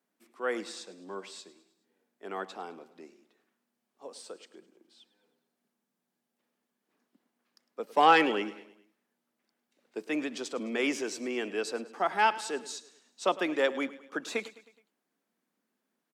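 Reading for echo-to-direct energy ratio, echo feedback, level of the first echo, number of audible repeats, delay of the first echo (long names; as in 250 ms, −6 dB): −16.0 dB, 51%, −17.5 dB, 3, 105 ms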